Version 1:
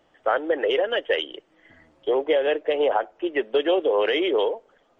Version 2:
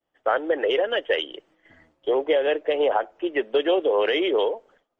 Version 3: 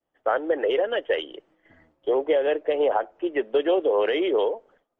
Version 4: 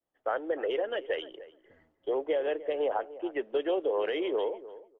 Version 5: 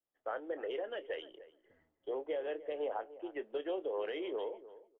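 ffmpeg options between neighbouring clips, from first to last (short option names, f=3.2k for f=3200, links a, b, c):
-af "agate=range=-33dB:threshold=-51dB:ratio=3:detection=peak"
-af "highshelf=f=2.3k:g=-9"
-filter_complex "[0:a]asplit=2[a][b];[b]adelay=299,lowpass=f=1.4k:p=1,volume=-15.5dB,asplit=2[c][d];[d]adelay=299,lowpass=f=1.4k:p=1,volume=0.15[e];[a][c][e]amix=inputs=3:normalize=0,volume=-7.5dB"
-filter_complex "[0:a]asplit=2[a][b];[b]adelay=27,volume=-13.5dB[c];[a][c]amix=inputs=2:normalize=0,volume=-8.5dB"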